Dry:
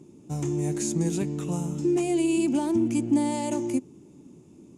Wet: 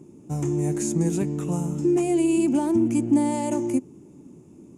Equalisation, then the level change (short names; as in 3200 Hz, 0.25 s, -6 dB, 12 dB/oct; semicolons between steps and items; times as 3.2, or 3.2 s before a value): bell 3900 Hz -8 dB 1.2 oct; +3.0 dB